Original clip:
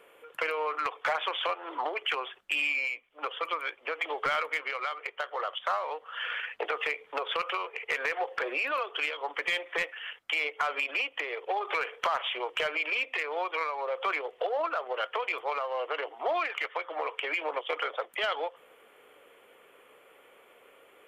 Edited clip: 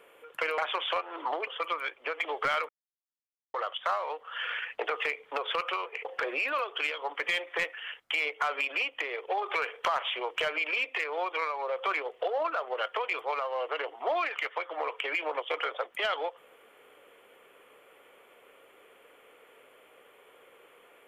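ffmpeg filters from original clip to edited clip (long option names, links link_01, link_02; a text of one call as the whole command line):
ffmpeg -i in.wav -filter_complex "[0:a]asplit=6[link_01][link_02][link_03][link_04][link_05][link_06];[link_01]atrim=end=0.582[link_07];[link_02]atrim=start=1.108:end=2.002[link_08];[link_03]atrim=start=3.278:end=4.5,asetpts=PTS-STARTPTS,afade=type=out:start_time=1.218:duration=0.004:curve=hsin[link_09];[link_04]atrim=start=4.5:end=5.35,asetpts=PTS-STARTPTS,volume=0[link_10];[link_05]atrim=start=5.35:end=7.862,asetpts=PTS-STARTPTS,afade=type=in:duration=0.004:curve=hsin[link_11];[link_06]atrim=start=8.238[link_12];[link_07][link_08]acrossfade=duration=0.004:curve1=hsin:curve2=hsin[link_13];[link_09][link_10][link_11]concat=n=3:v=0:a=1[link_14];[link_13][link_14]acrossfade=duration=0.004:curve1=hsin:curve2=hsin[link_15];[link_15][link_12]acrossfade=duration=0.004:curve1=hsin:curve2=hsin" out.wav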